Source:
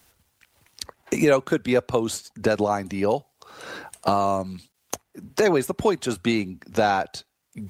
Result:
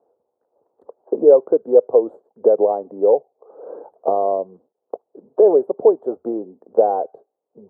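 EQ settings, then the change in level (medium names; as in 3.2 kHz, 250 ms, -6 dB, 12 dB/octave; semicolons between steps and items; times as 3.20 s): resonant high-pass 460 Hz, resonance Q 3.6; inverse Chebyshev low-pass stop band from 2.1 kHz, stop band 50 dB; 0.0 dB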